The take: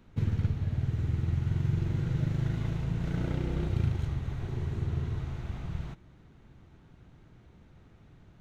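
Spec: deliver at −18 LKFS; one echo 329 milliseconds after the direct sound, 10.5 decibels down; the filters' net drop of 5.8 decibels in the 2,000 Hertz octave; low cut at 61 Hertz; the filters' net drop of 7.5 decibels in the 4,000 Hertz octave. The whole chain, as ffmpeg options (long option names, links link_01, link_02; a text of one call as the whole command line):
ffmpeg -i in.wav -af "highpass=61,equalizer=frequency=2000:width_type=o:gain=-6,equalizer=frequency=4000:width_type=o:gain=-7.5,aecho=1:1:329:0.299,volume=14.5dB" out.wav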